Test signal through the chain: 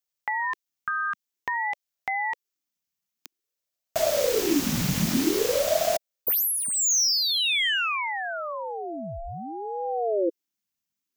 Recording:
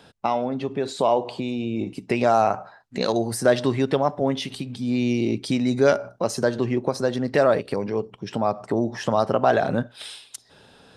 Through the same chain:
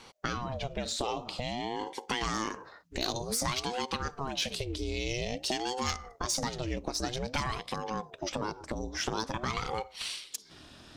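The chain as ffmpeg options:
ffmpeg -i in.wav -filter_complex "[0:a]acrossover=split=2500[link_01][link_02];[link_01]acompressor=threshold=-28dB:ratio=6[link_03];[link_02]asplit=2[link_04][link_05];[link_05]highpass=frequency=720:poles=1,volume=11dB,asoftclip=type=tanh:threshold=-15.5dB[link_06];[link_04][link_06]amix=inputs=2:normalize=0,lowpass=frequency=4500:poles=1,volume=-6dB[link_07];[link_03][link_07]amix=inputs=2:normalize=0,asubboost=boost=5.5:cutoff=99,aexciter=amount=2.2:drive=1.3:freq=5500,aeval=exprs='val(0)*sin(2*PI*410*n/s+410*0.6/0.51*sin(2*PI*0.51*n/s))':channel_layout=same" out.wav

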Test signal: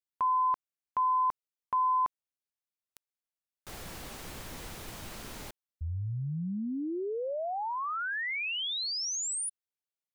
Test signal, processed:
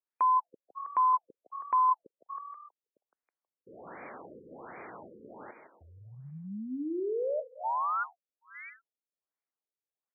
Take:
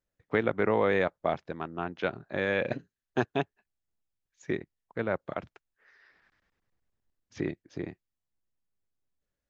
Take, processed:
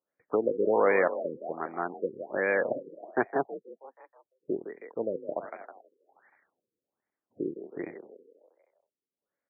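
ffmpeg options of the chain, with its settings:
ffmpeg -i in.wav -filter_complex "[0:a]highpass=330,lowpass=5400,asplit=7[link_01][link_02][link_03][link_04][link_05][link_06][link_07];[link_02]adelay=160,afreqshift=40,volume=-10dB[link_08];[link_03]adelay=320,afreqshift=80,volume=-15.7dB[link_09];[link_04]adelay=480,afreqshift=120,volume=-21.4dB[link_10];[link_05]adelay=640,afreqshift=160,volume=-27dB[link_11];[link_06]adelay=800,afreqshift=200,volume=-32.7dB[link_12];[link_07]adelay=960,afreqshift=240,volume=-38.4dB[link_13];[link_01][link_08][link_09][link_10][link_11][link_12][link_13]amix=inputs=7:normalize=0,afftfilt=real='re*lt(b*sr/1024,510*pow(2500/510,0.5+0.5*sin(2*PI*1.3*pts/sr)))':imag='im*lt(b*sr/1024,510*pow(2500/510,0.5+0.5*sin(2*PI*1.3*pts/sr)))':win_size=1024:overlap=0.75,volume=3dB" out.wav

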